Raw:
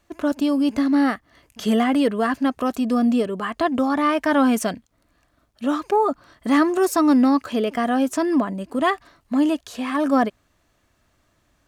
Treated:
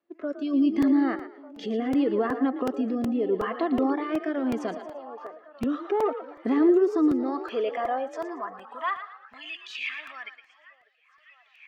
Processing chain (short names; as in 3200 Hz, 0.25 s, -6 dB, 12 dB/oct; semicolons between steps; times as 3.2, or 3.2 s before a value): recorder AGC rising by 13 dB/s; spectral noise reduction 13 dB; 5.85–6.52 sample leveller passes 1; 9.34–9.89 resonant high shelf 1900 Hz +9 dB, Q 3; limiter -18.5 dBFS, peak gain reduction 10.5 dB; delay with a stepping band-pass 0.598 s, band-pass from 560 Hz, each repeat 0.7 oct, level -10 dB; high-pass sweep 320 Hz -> 2100 Hz, 6.96–9.83; frequency-shifting echo 0.114 s, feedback 32%, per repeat +44 Hz, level -11 dB; rotary speaker horn 0.75 Hz; air absorption 210 m; crackling interface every 0.37 s, samples 128, repeat, from 0.82; gain -1 dB